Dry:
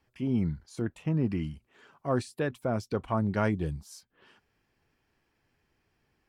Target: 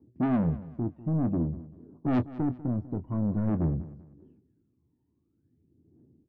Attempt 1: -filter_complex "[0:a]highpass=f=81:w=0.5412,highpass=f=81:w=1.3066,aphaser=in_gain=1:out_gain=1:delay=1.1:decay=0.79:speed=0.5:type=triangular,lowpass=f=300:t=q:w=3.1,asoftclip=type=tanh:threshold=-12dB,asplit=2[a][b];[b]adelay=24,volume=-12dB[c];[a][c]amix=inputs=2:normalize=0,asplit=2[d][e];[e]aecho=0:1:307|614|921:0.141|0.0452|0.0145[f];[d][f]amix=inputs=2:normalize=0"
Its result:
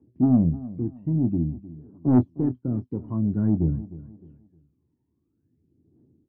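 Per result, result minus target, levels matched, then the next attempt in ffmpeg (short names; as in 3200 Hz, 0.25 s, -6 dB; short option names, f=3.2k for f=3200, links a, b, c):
echo 0.112 s late; soft clip: distortion -9 dB
-filter_complex "[0:a]highpass=f=81:w=0.5412,highpass=f=81:w=1.3066,aphaser=in_gain=1:out_gain=1:delay=1.1:decay=0.79:speed=0.5:type=triangular,lowpass=f=300:t=q:w=3.1,asoftclip=type=tanh:threshold=-12dB,asplit=2[a][b];[b]adelay=24,volume=-12dB[c];[a][c]amix=inputs=2:normalize=0,asplit=2[d][e];[e]aecho=0:1:195|390|585:0.141|0.0452|0.0145[f];[d][f]amix=inputs=2:normalize=0"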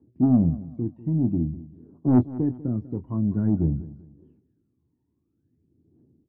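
soft clip: distortion -9 dB
-filter_complex "[0:a]highpass=f=81:w=0.5412,highpass=f=81:w=1.3066,aphaser=in_gain=1:out_gain=1:delay=1.1:decay=0.79:speed=0.5:type=triangular,lowpass=f=300:t=q:w=3.1,asoftclip=type=tanh:threshold=-23dB,asplit=2[a][b];[b]adelay=24,volume=-12dB[c];[a][c]amix=inputs=2:normalize=0,asplit=2[d][e];[e]aecho=0:1:195|390|585:0.141|0.0452|0.0145[f];[d][f]amix=inputs=2:normalize=0"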